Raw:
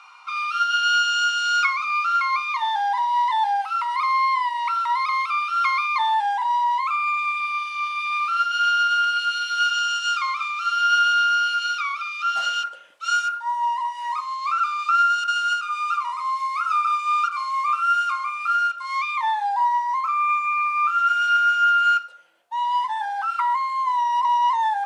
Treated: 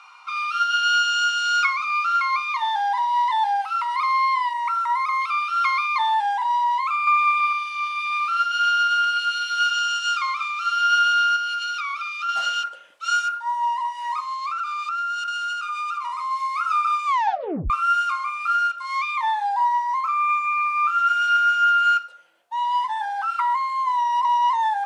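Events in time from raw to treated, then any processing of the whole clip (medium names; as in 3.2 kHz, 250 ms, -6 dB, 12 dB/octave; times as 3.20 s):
4.53–5.22 s: high-order bell 3.6 kHz -8 dB 1.2 oct
7.07–7.53 s: peaking EQ 630 Hz +11 dB 2.3 oct
11.36–12.29 s: compression, threshold -23 dBFS
14.33–16.31 s: compression, threshold -24 dBFS
17.06 s: tape stop 0.64 s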